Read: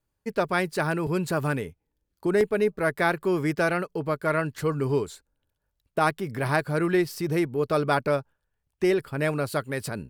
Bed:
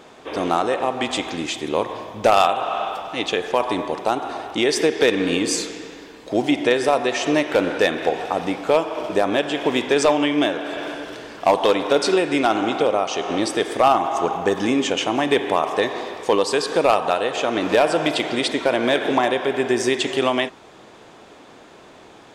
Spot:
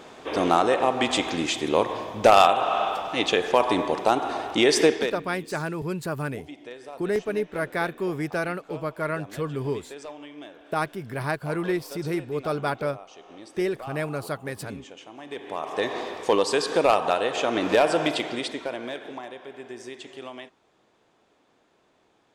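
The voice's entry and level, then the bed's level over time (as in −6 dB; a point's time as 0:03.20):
4.75 s, −3.5 dB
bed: 0:04.91 0 dB
0:05.25 −23 dB
0:15.15 −23 dB
0:15.93 −3 dB
0:18.02 −3 dB
0:19.22 −19.5 dB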